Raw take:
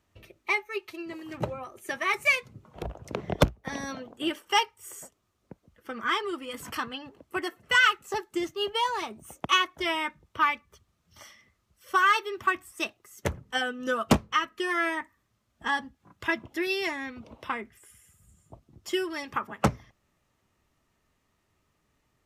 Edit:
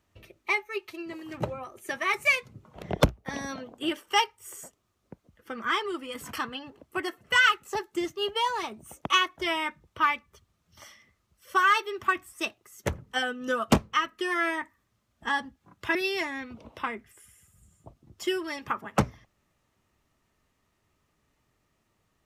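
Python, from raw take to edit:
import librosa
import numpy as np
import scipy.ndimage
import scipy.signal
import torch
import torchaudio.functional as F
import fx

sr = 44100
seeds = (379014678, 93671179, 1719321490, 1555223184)

y = fx.edit(x, sr, fx.cut(start_s=2.82, length_s=0.39),
    fx.cut(start_s=16.34, length_s=0.27), tone=tone)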